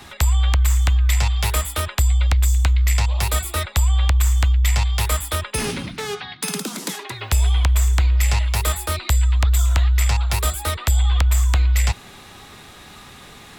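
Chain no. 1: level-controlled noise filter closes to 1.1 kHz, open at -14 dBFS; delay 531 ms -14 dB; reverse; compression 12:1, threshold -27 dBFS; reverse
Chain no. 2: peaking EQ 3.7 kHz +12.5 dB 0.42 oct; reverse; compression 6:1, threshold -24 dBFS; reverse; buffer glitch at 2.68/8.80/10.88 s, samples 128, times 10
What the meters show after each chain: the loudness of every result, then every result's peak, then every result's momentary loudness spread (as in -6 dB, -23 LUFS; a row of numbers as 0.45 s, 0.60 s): -32.0 LUFS, -28.0 LUFS; -17.0 dBFS, -12.0 dBFS; 3 LU, 3 LU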